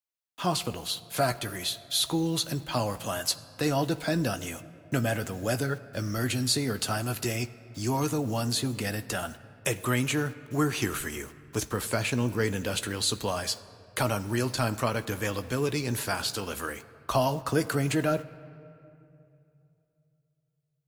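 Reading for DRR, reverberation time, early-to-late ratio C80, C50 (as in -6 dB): 11.0 dB, 2.8 s, 17.0 dB, 16.5 dB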